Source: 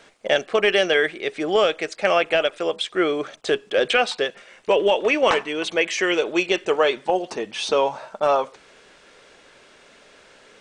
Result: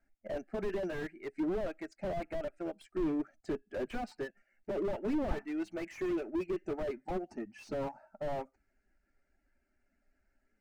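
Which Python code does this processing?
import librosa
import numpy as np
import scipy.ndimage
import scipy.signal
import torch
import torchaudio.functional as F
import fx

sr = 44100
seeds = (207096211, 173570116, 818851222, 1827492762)

p1 = fx.bin_expand(x, sr, power=1.5)
p2 = fx.riaa(p1, sr, side='playback')
p3 = np.sign(p2) * np.maximum(np.abs(p2) - 10.0 ** (-32.5 / 20.0), 0.0)
p4 = p2 + (p3 * librosa.db_to_amplitude(-7.5))
p5 = fx.fixed_phaser(p4, sr, hz=710.0, stages=8)
p6 = fx.slew_limit(p5, sr, full_power_hz=25.0)
y = p6 * librosa.db_to_amplitude(-7.0)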